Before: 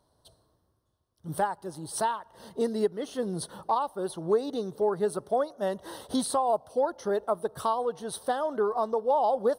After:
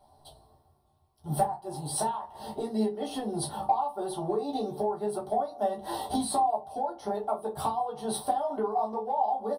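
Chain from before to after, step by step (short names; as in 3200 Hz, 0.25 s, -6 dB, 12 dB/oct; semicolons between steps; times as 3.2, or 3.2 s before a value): thirty-one-band EQ 160 Hz -8 dB, 800 Hz +11 dB, 1600 Hz -11 dB, 6300 Hz -9 dB; compressor 12:1, threshold -32 dBFS, peak gain reduction 19 dB; doubler 14 ms -5 dB; reverb RT60 0.25 s, pre-delay 3 ms, DRR -2 dB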